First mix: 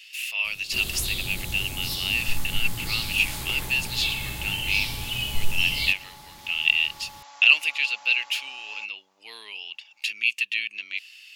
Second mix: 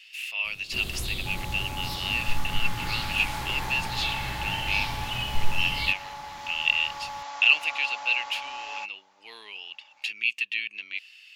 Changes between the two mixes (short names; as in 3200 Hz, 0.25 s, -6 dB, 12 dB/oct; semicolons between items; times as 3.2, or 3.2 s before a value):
second sound +10.5 dB; master: add high shelf 4500 Hz -11 dB